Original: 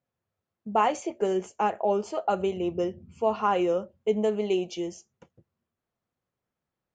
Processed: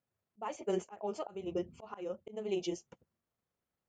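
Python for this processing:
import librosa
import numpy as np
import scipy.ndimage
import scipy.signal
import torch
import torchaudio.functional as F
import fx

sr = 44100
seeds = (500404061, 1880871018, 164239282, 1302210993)

y = fx.stretch_grains(x, sr, factor=0.56, grain_ms=78.0)
y = fx.auto_swell(y, sr, attack_ms=441.0)
y = F.gain(torch.from_numpy(y), -2.0).numpy()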